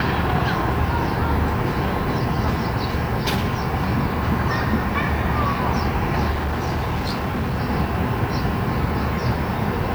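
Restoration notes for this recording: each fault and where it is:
0:06.30–0:07.59: clipping −19.5 dBFS

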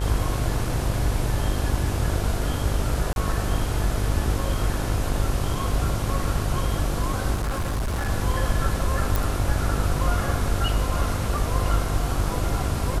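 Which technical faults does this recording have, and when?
mains buzz 50 Hz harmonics 32 −28 dBFS
0:03.13–0:03.16: drop-out 31 ms
0:07.34–0:08.09: clipping −22 dBFS
0:09.16: click

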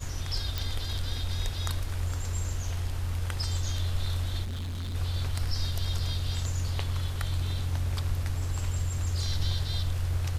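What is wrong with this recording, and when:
0:00.58: click
0:04.44–0:04.96: clipping −31.5 dBFS

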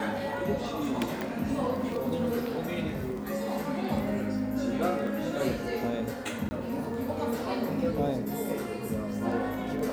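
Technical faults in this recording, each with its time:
surface crackle 12 per second
0:01.21: click
0:06.49–0:06.51: drop-out 20 ms

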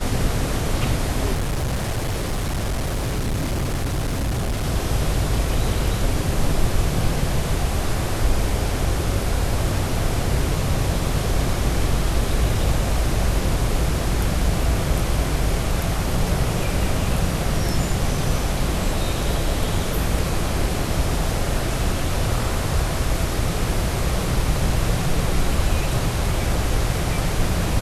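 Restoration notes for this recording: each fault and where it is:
0:01.33–0:04.64: clipping −19.5 dBFS

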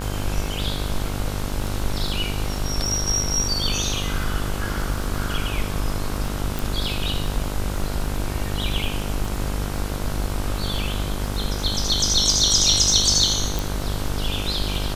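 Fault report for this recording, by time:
mains buzz 50 Hz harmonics 32 −28 dBFS
surface crackle 19 per second −29 dBFS
0:06.59: click
0:13.59: click

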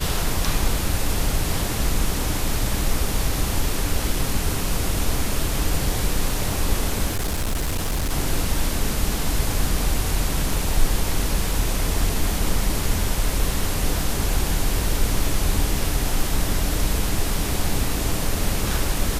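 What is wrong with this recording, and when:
0:07.06–0:08.11: clipping −19.5 dBFS

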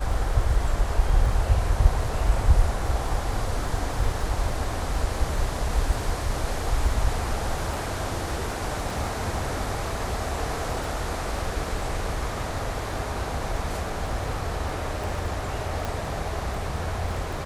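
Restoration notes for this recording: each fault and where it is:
surface crackle 12 per second −31 dBFS
0:15.85: click

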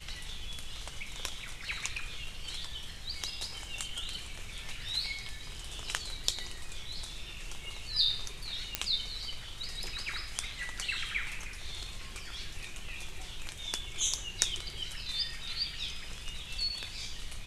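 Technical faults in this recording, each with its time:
0:08.75: click −10 dBFS

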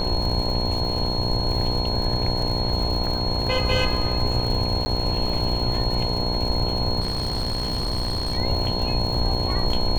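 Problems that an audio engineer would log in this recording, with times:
mains buzz 60 Hz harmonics 17 −28 dBFS
surface crackle 130 per second −30 dBFS
whistle 4,300 Hz −27 dBFS
0:04.85–0:04.86: drop-out 10 ms
0:07.00–0:08.38: clipping −21 dBFS

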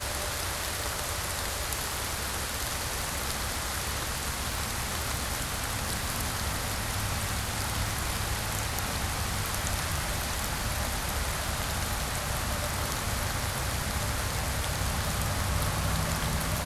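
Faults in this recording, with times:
surface crackle 74 per second −34 dBFS

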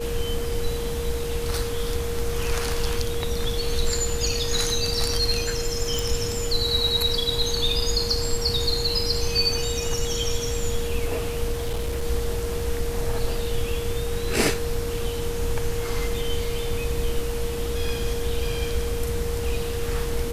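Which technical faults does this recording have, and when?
whistle 470 Hz −29 dBFS
0:05.99: click
0:11.52–0:12.04: clipping −22 dBFS

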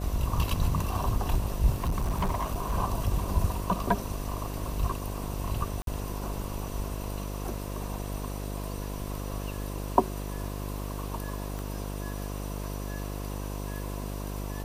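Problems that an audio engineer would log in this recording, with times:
mains buzz 50 Hz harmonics 14 −35 dBFS
0:01.71–0:02.75: clipping −24 dBFS
0:05.82–0:05.87: drop-out 52 ms
0:11.59: click

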